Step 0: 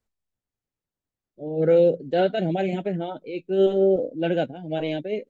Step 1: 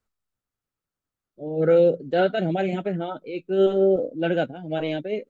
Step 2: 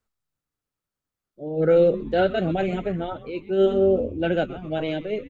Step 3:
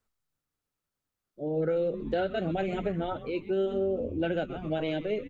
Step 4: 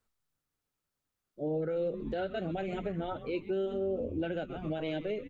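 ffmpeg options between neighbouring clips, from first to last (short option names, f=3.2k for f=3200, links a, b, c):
-af "equalizer=f=1.3k:w=3:g=8.5"
-filter_complex "[0:a]asplit=6[a][b][c][d][e][f];[b]adelay=127,afreqshift=-150,volume=-15.5dB[g];[c]adelay=254,afreqshift=-300,volume=-21dB[h];[d]adelay=381,afreqshift=-450,volume=-26.5dB[i];[e]adelay=508,afreqshift=-600,volume=-32dB[j];[f]adelay=635,afreqshift=-750,volume=-37.6dB[k];[a][g][h][i][j][k]amix=inputs=6:normalize=0"
-af "bandreject=f=60:t=h:w=6,bandreject=f=120:t=h:w=6,bandreject=f=180:t=h:w=6,acompressor=threshold=-26dB:ratio=6"
-af "alimiter=level_in=1dB:limit=-24dB:level=0:latency=1:release=369,volume=-1dB"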